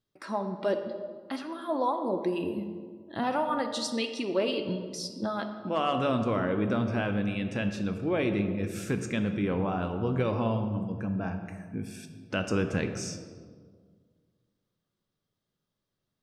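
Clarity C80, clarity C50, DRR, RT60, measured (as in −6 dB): 9.0 dB, 8.0 dB, 6.0 dB, 1.8 s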